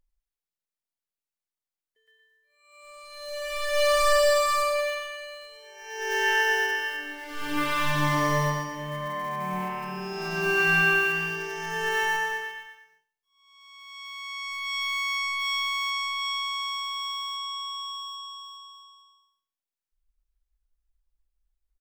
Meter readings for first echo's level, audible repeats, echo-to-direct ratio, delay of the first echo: −15.0 dB, 3, −14.5 dB, 92 ms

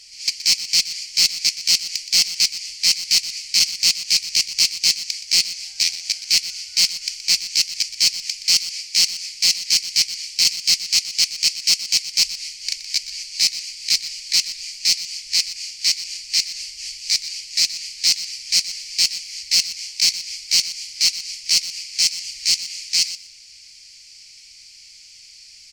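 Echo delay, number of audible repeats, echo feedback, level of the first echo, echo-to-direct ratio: 122 ms, 2, 16%, −13.5 dB, −13.5 dB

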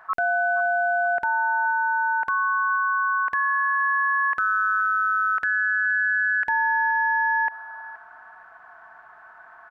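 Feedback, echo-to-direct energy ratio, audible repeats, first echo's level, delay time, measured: 24%, −17.5 dB, 2, −17.5 dB, 473 ms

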